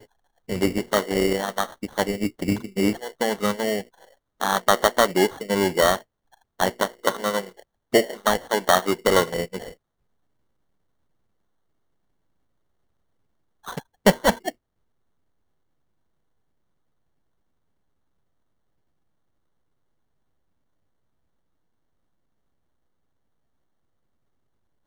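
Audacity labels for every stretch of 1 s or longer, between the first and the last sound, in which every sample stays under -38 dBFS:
9.710000	13.670000	silence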